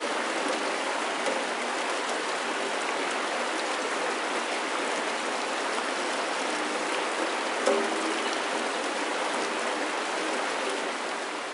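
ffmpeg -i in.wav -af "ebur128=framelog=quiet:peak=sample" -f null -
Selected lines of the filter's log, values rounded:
Integrated loudness:
  I:         -28.4 LUFS
  Threshold: -38.4 LUFS
Loudness range:
  LRA:         0.8 LU
  Threshold: -48.3 LUFS
  LRA low:   -28.5 LUFS
  LRA high:  -27.8 LUFS
Sample peak:
  Peak:      -10.4 dBFS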